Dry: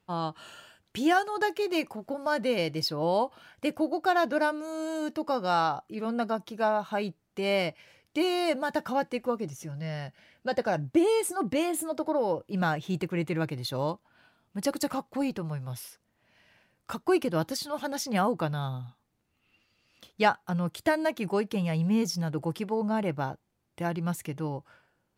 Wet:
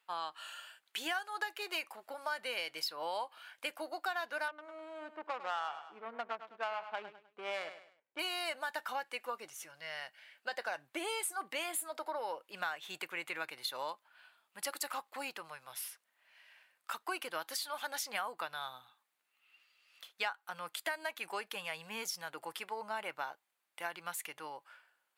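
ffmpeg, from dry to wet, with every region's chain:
ffmpeg -i in.wav -filter_complex "[0:a]asettb=1/sr,asplit=3[link_01][link_02][link_03];[link_01]atrim=end=4.484[link_04];[link_02]atrim=start=4.48:end=8.19,asetpts=PTS-STARTPTS,afade=type=in:duration=0.004:curve=qsin,afade=type=out:start_time=3.706:duration=0.004:curve=qsin,equalizer=frequency=9900:width=1.1:gain=9.5,adynamicsmooth=sensitivity=1:basefreq=510,aecho=1:1:102|204|306:0.224|0.0761|0.0259,atrim=end_sample=163611[link_05];[link_03]atrim=start=8.186[link_06];[link_04][link_05]acrossfade=duration=0.004:curve1=hsin:curve2=qsin[link_07];[link_07][link_06]acrossfade=duration=0.004:curve1=qsin:curve2=hsin,highpass=1200,equalizer=frequency=5700:width=2:gain=-6.5,acompressor=threshold=-37dB:ratio=4,volume=2.5dB" out.wav

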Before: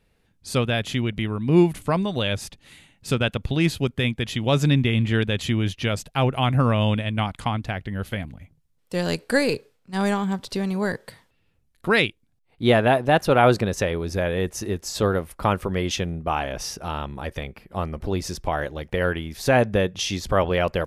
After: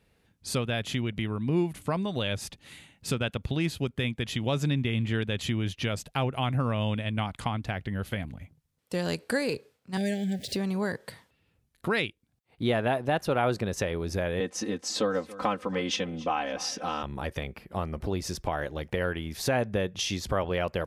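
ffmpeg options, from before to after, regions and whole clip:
ffmpeg -i in.wav -filter_complex "[0:a]asettb=1/sr,asplit=3[link_01][link_02][link_03];[link_01]atrim=end=9.974[link_04];[link_02]atrim=start=9.97:end=10.56,asetpts=PTS-STARTPTS,afade=type=in:duration=0.004:curve=qsin,afade=type=out:start_time=0.586:duration=0.004:curve=qsin,aeval=exprs='val(0)+0.5*0.0112*sgn(val(0))':channel_layout=same,asuperstop=centerf=1100:order=12:qfactor=1.2,equalizer=frequency=320:width_type=o:width=0.39:gain=-6[link_05];[link_03]atrim=start=10.556[link_06];[link_04][link_05]acrossfade=duration=0.004:curve1=hsin:curve2=qsin[link_07];[link_07][link_06]acrossfade=duration=0.004:curve1=qsin:curve2=hsin,asettb=1/sr,asplit=3[link_08][link_09][link_10];[link_08]atrim=end=14.404[link_11];[link_09]atrim=start=14.4:end=17.03,asetpts=PTS-STARTPTS,afade=type=in:duration=0.004:curve=qsin,afade=type=out:start_time=2.626:duration=0.004:curve=qsin,highpass=180,lowpass=6500,aecho=1:1:3.9:0.95,atrim=end_sample=115983,aecho=1:1:278|556|834:0.075|0.0285|0.0108,atrim=end_sample=115983[link_12];[link_10]atrim=start=17.026[link_13];[link_11][link_12]acrossfade=duration=0.004:curve1=hsin:curve2=qsin[link_14];[link_14][link_13]acrossfade=duration=0.004:curve1=qsin:curve2=hsin,highpass=47,acompressor=threshold=-30dB:ratio=2" out.wav

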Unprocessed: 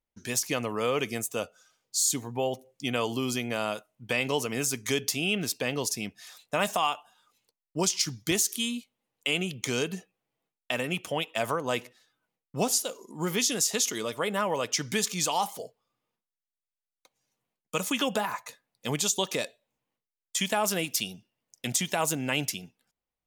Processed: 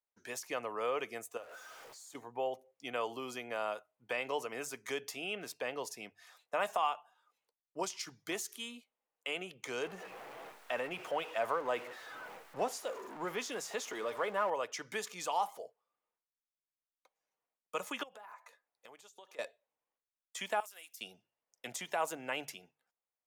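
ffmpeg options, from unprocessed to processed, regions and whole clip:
ffmpeg -i in.wav -filter_complex "[0:a]asettb=1/sr,asplit=3[link_01][link_02][link_03];[link_01]atrim=end=1.374[link_04];[link_02]atrim=start=1.37:end=2.15,asetpts=PTS-STARTPTS,afade=type=in:duration=0.004:curve=qsin,afade=type=out:start_time=0.776:duration=0.004:curve=qsin,aeval=exprs='val(0)+0.5*0.0141*sgn(val(0))':channel_layout=same,bandreject=frequency=200:width=5.5,acompressor=threshold=-40dB:ratio=3:attack=3.2:release=140:knee=1:detection=peak[link_05];[link_03]atrim=start=2.146[link_06];[link_04][link_05]acrossfade=duration=0.004:curve1=hsin:curve2=qsin[link_07];[link_07][link_06]acrossfade=duration=0.004:curve1=qsin:curve2=hsin,asettb=1/sr,asplit=3[link_08][link_09][link_10];[link_08]atrim=end=9.834[link_11];[link_09]atrim=start=9.83:end=14.5,asetpts=PTS-STARTPTS,afade=type=in:duration=0.004:curve=qsin,afade=type=out:start_time=4.666:duration=0.004:curve=qsin,aeval=exprs='val(0)+0.5*0.0237*sgn(val(0))':channel_layout=same,highshelf=frequency=4800:gain=-6.5[link_12];[link_10]atrim=start=14.496[link_13];[link_11][link_12]acrossfade=duration=0.004:curve1=hsin:curve2=qsin[link_14];[link_14][link_13]acrossfade=duration=0.004:curve1=qsin:curve2=hsin,asettb=1/sr,asplit=3[link_15][link_16][link_17];[link_15]atrim=end=18.034[link_18];[link_16]atrim=start=18.03:end=19.39,asetpts=PTS-STARTPTS,afade=type=in:duration=0.004:curve=qsin,afade=type=out:start_time=1.356:duration=0.004:curve=qsin,equalizer=frequency=120:width_type=o:width=1.9:gain=-8,acompressor=threshold=-42dB:ratio=10:attack=3.2:release=140:knee=1:detection=peak[link_19];[link_17]atrim=start=19.386[link_20];[link_18][link_19]acrossfade=duration=0.004:curve1=hsin:curve2=qsin[link_21];[link_21][link_20]acrossfade=duration=0.004:curve1=qsin:curve2=hsin,asettb=1/sr,asplit=3[link_22][link_23][link_24];[link_22]atrim=end=20.604[link_25];[link_23]atrim=start=20.6:end=21.01,asetpts=PTS-STARTPTS,afade=type=in:duration=0.004:curve=qsin,afade=type=out:start_time=0.406:duration=0.004:curve=qsin,aderivative,acompressor=threshold=-34dB:ratio=3:attack=3.2:release=140:knee=1:detection=peak[link_26];[link_24]atrim=start=21.006[link_27];[link_25][link_26]acrossfade=duration=0.004:curve1=hsin:curve2=qsin[link_28];[link_28][link_27]acrossfade=duration=0.004:curve1=qsin:curve2=hsin,acrossover=split=410 2100:gain=0.112 1 0.251[link_29][link_30][link_31];[link_29][link_30][link_31]amix=inputs=3:normalize=0,bandreject=frequency=50:width_type=h:width=6,bandreject=frequency=100:width_type=h:width=6,bandreject=frequency=150:width_type=h:width=6,volume=-4dB" out.wav

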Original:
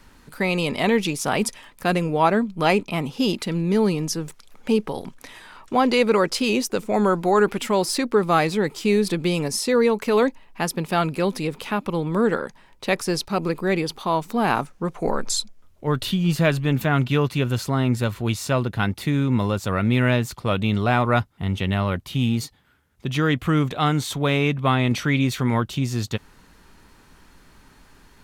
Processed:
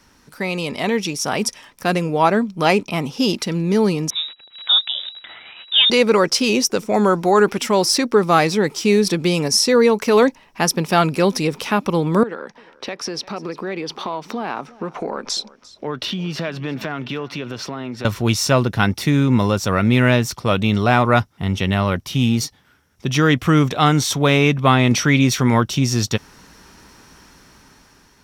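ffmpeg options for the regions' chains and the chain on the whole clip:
ffmpeg -i in.wav -filter_complex "[0:a]asettb=1/sr,asplit=3[link_01][link_02][link_03];[link_01]atrim=end=4.104[link_04];[link_02]atrim=start=4.1:end=5.9,asetpts=PTS-STARTPTS,afade=type=in:duration=0.004:curve=qsin,afade=type=out:start_time=1.796:duration=0.004:curve=qsin,acrusher=bits=8:dc=4:mix=0:aa=0.000001,lowpass=frequency=3300:width_type=q:width=0.5098,lowpass=frequency=3300:width_type=q:width=0.6013,lowpass=frequency=3300:width_type=q:width=0.9,lowpass=frequency=3300:width_type=q:width=2.563,afreqshift=-3900[link_05];[link_03]atrim=start=5.896[link_06];[link_04][link_05]acrossfade=duration=0.004:curve1=hsin:curve2=qsin[link_07];[link_07][link_06]acrossfade=duration=0.004:curve1=qsin:curve2=hsin,asettb=1/sr,asplit=3[link_08][link_09][link_10];[link_08]atrim=end=12.234[link_11];[link_09]atrim=start=12.23:end=18.05,asetpts=PTS-STARTPTS,afade=type=in:duration=0.004:curve=qsin,afade=type=out:start_time=5.816:duration=0.004:curve=qsin,acrossover=split=190 4500:gain=0.224 1 0.126[link_12][link_13][link_14];[link_12][link_13][link_14]amix=inputs=3:normalize=0,acompressor=threshold=-33dB:ratio=4:attack=3.2:release=140:knee=1:detection=peak,aecho=1:1:348:0.0891,atrim=end_sample=256662[link_15];[link_10]atrim=start=18.046[link_16];[link_11][link_15]acrossfade=duration=0.004:curve1=hsin:curve2=qsin[link_17];[link_17][link_16]acrossfade=duration=0.004:curve1=qsin:curve2=hsin,highpass=frequency=80:poles=1,equalizer=frequency=5600:width_type=o:width=0.2:gain=13,dynaudnorm=framelen=620:gausssize=5:maxgain=11.5dB,volume=-1dB" out.wav

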